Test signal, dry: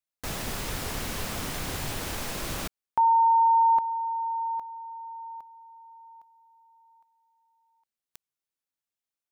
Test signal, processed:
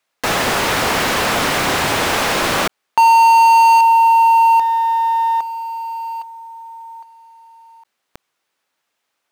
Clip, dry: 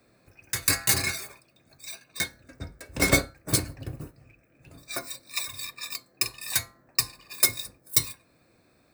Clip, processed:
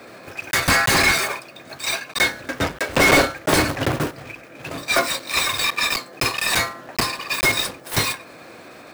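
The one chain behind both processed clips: block floating point 3-bit; overdrive pedal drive 34 dB, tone 1700 Hz, clips at -2 dBFS

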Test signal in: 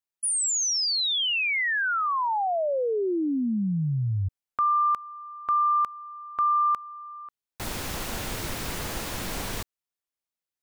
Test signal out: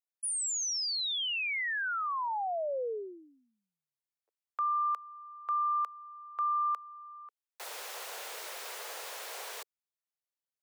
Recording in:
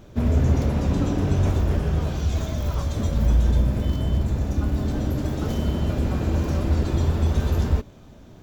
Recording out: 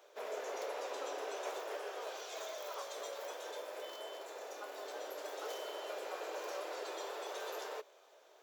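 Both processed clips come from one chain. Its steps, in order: steep high-pass 430 Hz 48 dB/oct; gain -7.5 dB

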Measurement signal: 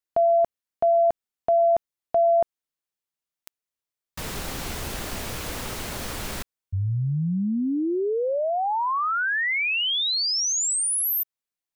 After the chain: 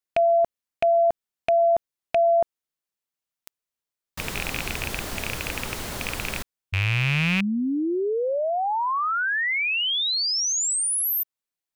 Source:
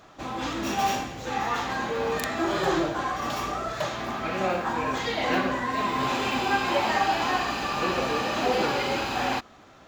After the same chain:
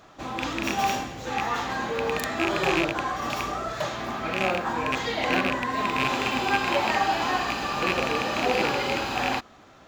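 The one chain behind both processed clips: rattling part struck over -32 dBFS, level -13 dBFS

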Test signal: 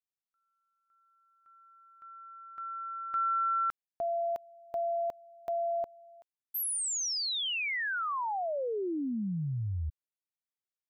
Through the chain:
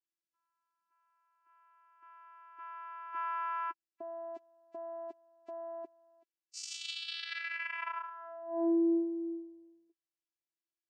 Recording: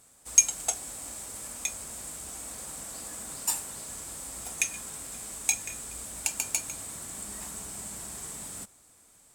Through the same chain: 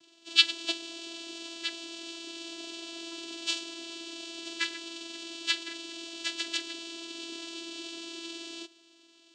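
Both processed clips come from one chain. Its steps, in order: nonlinear frequency compression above 1200 Hz 1.5:1; band shelf 890 Hz -13 dB 1 oct; vocoder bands 8, saw 334 Hz

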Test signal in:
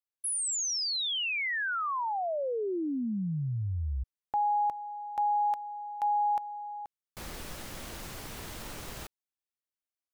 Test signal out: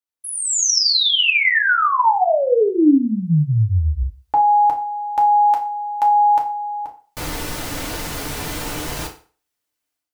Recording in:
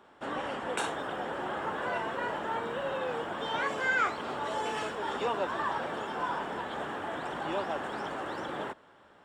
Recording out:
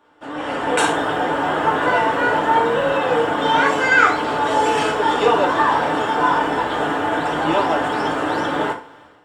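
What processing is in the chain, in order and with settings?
AGC gain up to 14 dB; FDN reverb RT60 0.4 s, low-frequency decay 0.85×, high-frequency decay 0.85×, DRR -0.5 dB; gain -2 dB

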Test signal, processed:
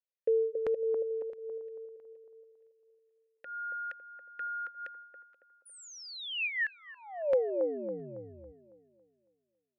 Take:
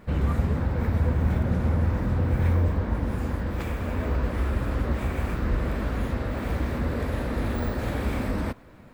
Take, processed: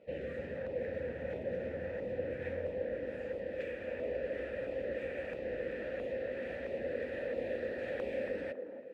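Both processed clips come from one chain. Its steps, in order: vowel filter e; LFO notch saw down 1.5 Hz 310–1800 Hz; on a send: band-limited delay 0.277 s, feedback 42%, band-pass 500 Hz, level -4 dB; on the sum: gain +4.5 dB

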